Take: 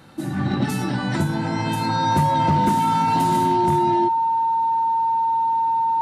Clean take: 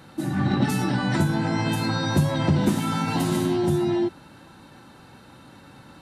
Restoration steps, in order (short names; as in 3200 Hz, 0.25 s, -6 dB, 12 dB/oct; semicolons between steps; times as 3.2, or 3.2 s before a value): clip repair -12 dBFS; notch 910 Hz, Q 30